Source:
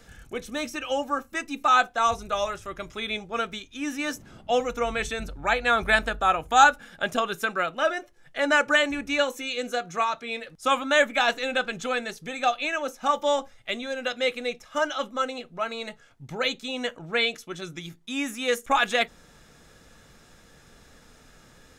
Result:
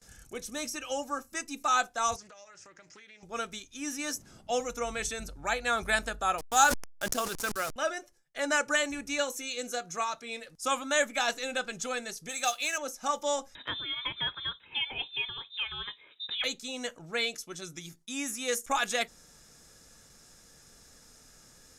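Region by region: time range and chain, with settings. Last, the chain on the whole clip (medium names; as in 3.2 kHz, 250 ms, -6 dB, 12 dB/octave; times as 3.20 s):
2.16–3.23 s: cabinet simulation 220–6500 Hz, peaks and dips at 240 Hz -9 dB, 400 Hz -7 dB, 680 Hz -5 dB, 1.1 kHz -10 dB, 1.8 kHz +5 dB, 3.5 kHz -9 dB + compression 8:1, threshold -43 dBFS + loudspeaker Doppler distortion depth 0.23 ms
6.38–7.76 s: send-on-delta sampling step -32.5 dBFS + decay stretcher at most 100 dB/s
12.29–12.78 s: tilt EQ +2.5 dB/octave + modulation noise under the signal 26 dB
13.55–16.44 s: high-pass 59 Hz + frequency inversion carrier 3.8 kHz + three bands compressed up and down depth 70%
whole clip: high-order bell 7.7 kHz +11.5 dB; gate with hold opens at -40 dBFS; trim -7 dB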